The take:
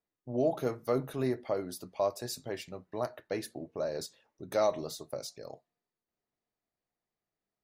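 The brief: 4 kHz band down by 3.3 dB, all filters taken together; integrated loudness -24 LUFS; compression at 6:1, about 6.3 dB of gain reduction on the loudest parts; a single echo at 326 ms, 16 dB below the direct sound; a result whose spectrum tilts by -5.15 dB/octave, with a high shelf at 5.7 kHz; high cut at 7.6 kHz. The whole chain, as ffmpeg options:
-af "lowpass=7600,equalizer=f=4000:t=o:g=-6,highshelf=f=5700:g=5,acompressor=threshold=0.0316:ratio=6,aecho=1:1:326:0.158,volume=5.31"

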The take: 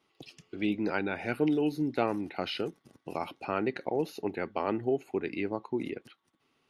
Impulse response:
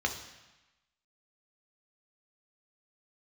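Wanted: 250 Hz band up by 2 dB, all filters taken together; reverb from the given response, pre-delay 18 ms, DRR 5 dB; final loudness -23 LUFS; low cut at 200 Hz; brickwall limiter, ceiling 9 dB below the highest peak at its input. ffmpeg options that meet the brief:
-filter_complex "[0:a]highpass=200,equalizer=f=250:t=o:g=4,alimiter=limit=0.0891:level=0:latency=1,asplit=2[s0][s1];[1:a]atrim=start_sample=2205,adelay=18[s2];[s1][s2]afir=irnorm=-1:irlink=0,volume=0.237[s3];[s0][s3]amix=inputs=2:normalize=0,volume=2.82"

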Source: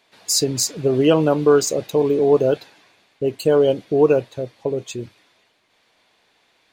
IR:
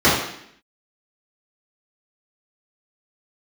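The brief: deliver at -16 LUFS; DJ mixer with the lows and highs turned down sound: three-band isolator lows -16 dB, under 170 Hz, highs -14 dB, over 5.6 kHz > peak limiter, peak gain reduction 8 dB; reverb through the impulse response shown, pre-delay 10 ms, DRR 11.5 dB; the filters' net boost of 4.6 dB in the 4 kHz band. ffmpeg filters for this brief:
-filter_complex "[0:a]equalizer=f=4000:t=o:g=9,asplit=2[s0][s1];[1:a]atrim=start_sample=2205,adelay=10[s2];[s1][s2]afir=irnorm=-1:irlink=0,volume=0.0158[s3];[s0][s3]amix=inputs=2:normalize=0,acrossover=split=170 5600:gain=0.158 1 0.2[s4][s5][s6];[s4][s5][s6]amix=inputs=3:normalize=0,volume=1.88,alimiter=limit=0.531:level=0:latency=1"

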